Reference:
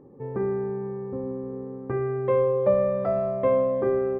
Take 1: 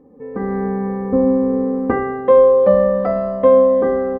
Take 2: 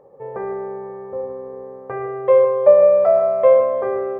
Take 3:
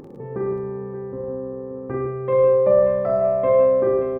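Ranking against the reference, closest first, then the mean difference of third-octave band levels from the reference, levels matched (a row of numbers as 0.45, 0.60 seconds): 3, 1, 2; 2.5, 3.5, 5.0 decibels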